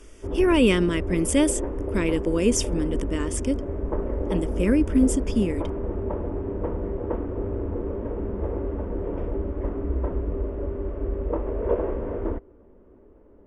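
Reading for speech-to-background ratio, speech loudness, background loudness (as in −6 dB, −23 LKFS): 6.0 dB, −24.0 LKFS, −30.0 LKFS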